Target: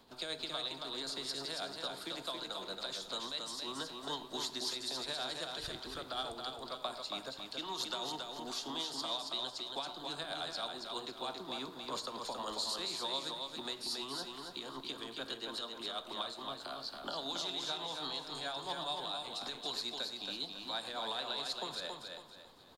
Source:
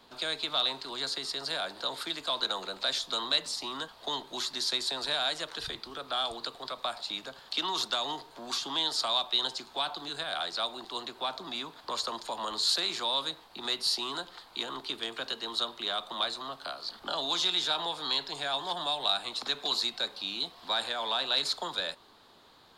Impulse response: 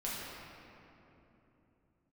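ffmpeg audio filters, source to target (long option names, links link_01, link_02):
-filter_complex "[0:a]equalizer=frequency=2100:width=0.31:gain=-6.5,alimiter=level_in=3.5dB:limit=-24dB:level=0:latency=1:release=408,volume=-3.5dB,tremolo=f=9.2:d=0.46,aecho=1:1:276|552|828|1104|1380:0.596|0.214|0.0772|0.0278|0.01,asplit=2[link_01][link_02];[1:a]atrim=start_sample=2205,atrim=end_sample=3528,asetrate=29547,aresample=44100[link_03];[link_02][link_03]afir=irnorm=-1:irlink=0,volume=-14dB[link_04];[link_01][link_04]amix=inputs=2:normalize=0"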